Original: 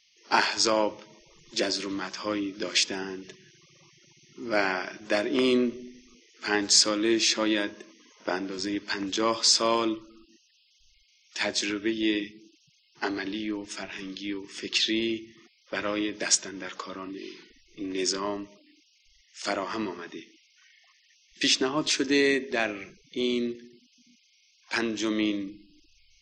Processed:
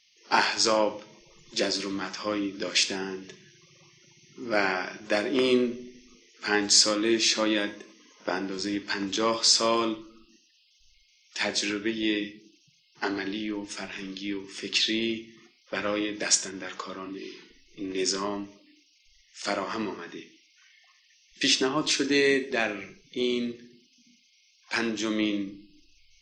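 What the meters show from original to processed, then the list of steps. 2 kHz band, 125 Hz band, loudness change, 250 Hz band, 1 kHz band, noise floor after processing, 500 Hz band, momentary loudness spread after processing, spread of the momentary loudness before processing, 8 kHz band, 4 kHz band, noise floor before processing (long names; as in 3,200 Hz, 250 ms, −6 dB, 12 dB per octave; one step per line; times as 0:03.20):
+0.5 dB, +1.5 dB, +0.5 dB, −0.5 dB, +0.5 dB, −64 dBFS, +0.5 dB, 16 LU, 15 LU, +0.5 dB, +0.5 dB, −65 dBFS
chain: reverb whose tail is shaped and stops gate 150 ms falling, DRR 8.5 dB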